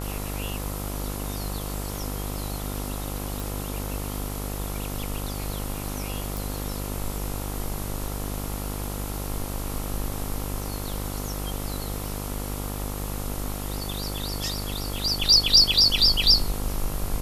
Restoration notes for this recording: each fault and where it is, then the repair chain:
mains buzz 50 Hz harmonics 28 −32 dBFS
0:03.40: click
0:06.37: click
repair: click removal
hum removal 50 Hz, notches 28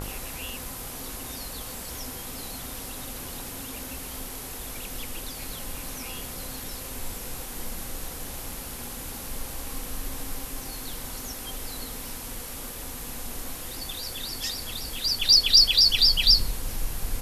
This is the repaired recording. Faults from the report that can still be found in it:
none of them is left

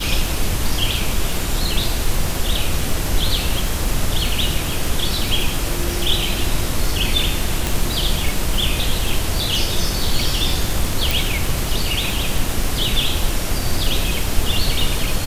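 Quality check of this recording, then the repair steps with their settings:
surface crackle 56 per second −21 dBFS
0:07.67: click
0:11.11: click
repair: click removal

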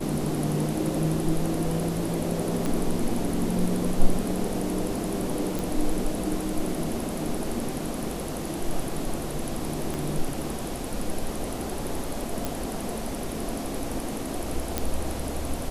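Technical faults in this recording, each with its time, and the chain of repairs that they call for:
0:02.66: click
0:05.59: click
0:09.94: click
0:12.45: click
0:14.78: click −9 dBFS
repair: click removal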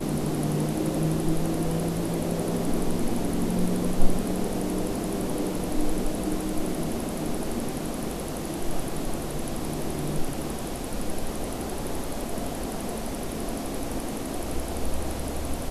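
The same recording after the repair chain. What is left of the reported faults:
0:02.66: click
0:09.94: click

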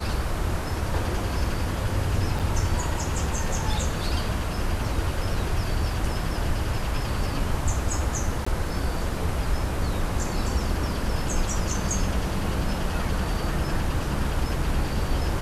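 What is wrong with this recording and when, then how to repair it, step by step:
0:02.39–0:02.40: drop-out 6.6 ms
0:08.45–0:08.46: drop-out 15 ms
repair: repair the gap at 0:02.39, 6.6 ms
repair the gap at 0:08.45, 15 ms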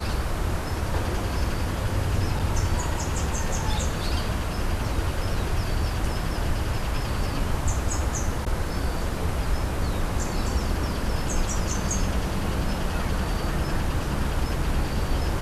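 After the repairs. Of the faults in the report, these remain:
none of them is left

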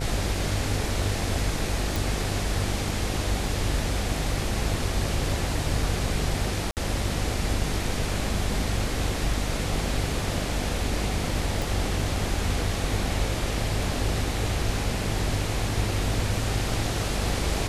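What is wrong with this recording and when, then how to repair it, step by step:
mains buzz 50 Hz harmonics 18 −31 dBFS
0:01.96: click
0:06.71–0:06.77: drop-out 58 ms
0:11.62: click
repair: click removal
hum removal 50 Hz, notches 18
repair the gap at 0:06.71, 58 ms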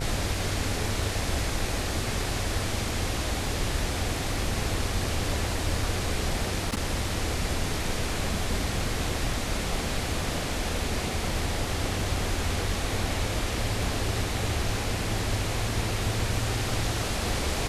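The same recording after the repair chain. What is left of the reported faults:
0:11.62: click

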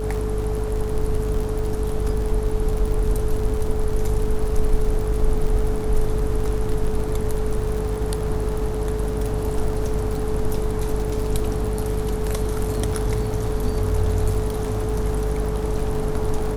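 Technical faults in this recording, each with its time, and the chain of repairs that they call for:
surface crackle 60 per second −27 dBFS
mains hum 50 Hz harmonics 7 −26 dBFS
whistle 430 Hz −27 dBFS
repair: click removal
notch filter 430 Hz, Q 30
hum removal 50 Hz, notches 7

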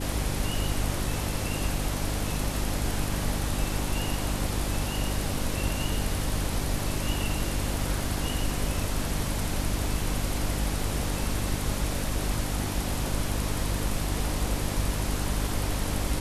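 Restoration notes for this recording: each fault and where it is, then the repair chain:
mains hum 50 Hz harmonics 6 −32 dBFS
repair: hum removal 50 Hz, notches 6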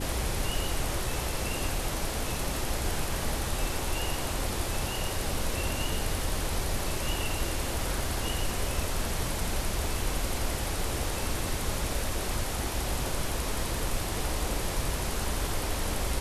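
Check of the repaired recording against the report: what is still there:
none of them is left

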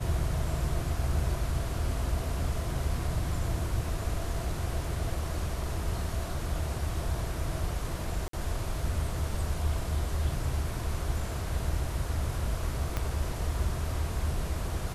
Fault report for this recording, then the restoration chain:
0:08.28–0:08.33: drop-out 53 ms
0:12.97: click −16 dBFS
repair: click removal
repair the gap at 0:08.28, 53 ms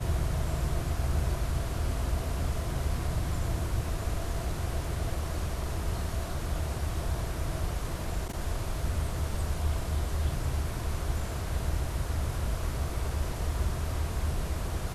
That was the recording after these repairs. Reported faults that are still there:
0:12.97: click

